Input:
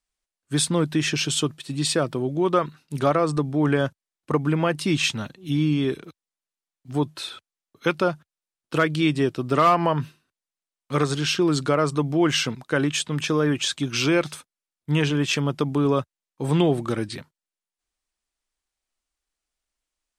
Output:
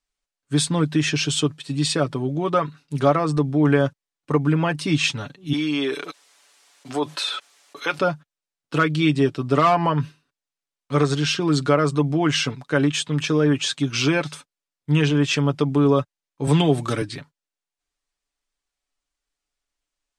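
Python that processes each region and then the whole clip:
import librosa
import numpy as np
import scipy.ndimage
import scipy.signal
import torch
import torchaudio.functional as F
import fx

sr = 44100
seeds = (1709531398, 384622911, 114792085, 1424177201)

y = fx.chain(x, sr, fx.highpass(hz=500.0, slope=12),
    fx.env_flatten(amount_pct=50), at=(5.53, 7.99))
y = fx.chain(y, sr, fx.high_shelf(hz=3300.0, db=8.5),
    fx.band_squash(depth_pct=40), at=(16.47, 17.02))
y = scipy.signal.sosfilt(scipy.signal.butter(2, 8600.0, 'lowpass', fs=sr, output='sos'), y)
y = y + 0.58 * np.pad(y, (int(7.0 * sr / 1000.0), 0))[:len(y)]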